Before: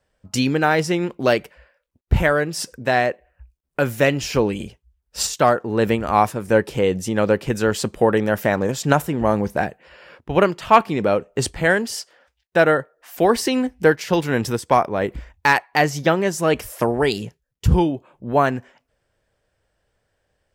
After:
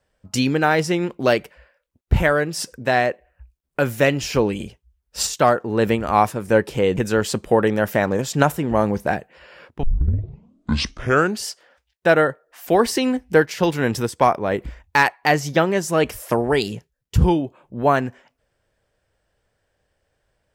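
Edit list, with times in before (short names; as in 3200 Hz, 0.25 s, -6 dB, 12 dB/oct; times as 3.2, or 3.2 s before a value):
6.97–7.47 cut
10.33 tape start 1.63 s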